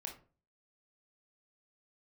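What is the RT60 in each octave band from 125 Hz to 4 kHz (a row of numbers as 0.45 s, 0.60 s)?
0.55 s, 0.45 s, 0.40 s, 0.35 s, 0.30 s, 0.20 s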